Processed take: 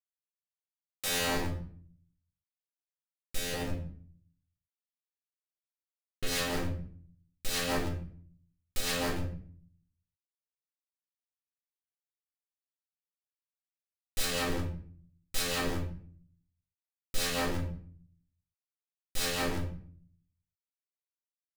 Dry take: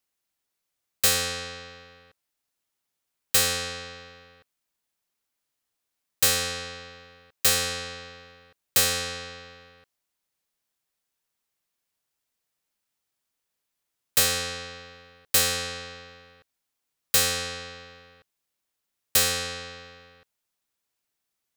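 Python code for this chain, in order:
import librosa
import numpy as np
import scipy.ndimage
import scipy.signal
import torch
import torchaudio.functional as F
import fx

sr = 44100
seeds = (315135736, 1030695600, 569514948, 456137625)

y = x + 0.5 * 10.0 ** (-36.0 / 20.0) * np.sign(x)
y = fx.lowpass(y, sr, hz=4100.0, slope=24, at=(3.53, 6.27))
y = fx.schmitt(y, sr, flips_db=-27.0)
y = fx.rotary_switch(y, sr, hz=0.65, then_hz=6.0, switch_at_s=5.59)
y = fx.room_shoebox(y, sr, seeds[0], volume_m3=60.0, walls='mixed', distance_m=0.94)
y = y * 10.0 ** (-2.5 / 20.0)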